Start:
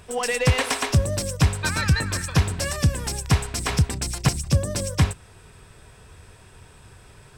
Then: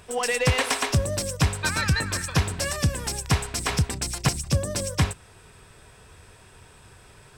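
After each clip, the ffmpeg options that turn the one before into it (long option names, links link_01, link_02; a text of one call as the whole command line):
ffmpeg -i in.wav -af "lowshelf=frequency=230:gain=-4.5" out.wav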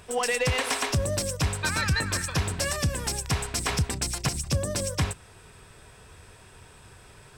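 ffmpeg -i in.wav -af "alimiter=limit=-16dB:level=0:latency=1:release=69" out.wav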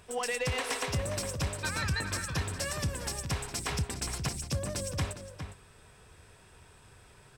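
ffmpeg -i in.wav -filter_complex "[0:a]asplit=2[link_01][link_02];[link_02]adelay=408.2,volume=-8dB,highshelf=frequency=4000:gain=-9.18[link_03];[link_01][link_03]amix=inputs=2:normalize=0,volume=-6.5dB" out.wav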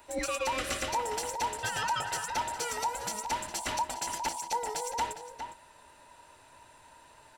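ffmpeg -i in.wav -af "afftfilt=real='real(if(between(b,1,1008),(2*floor((b-1)/48)+1)*48-b,b),0)':imag='imag(if(between(b,1,1008),(2*floor((b-1)/48)+1)*48-b,b),0)*if(between(b,1,1008),-1,1)':win_size=2048:overlap=0.75" out.wav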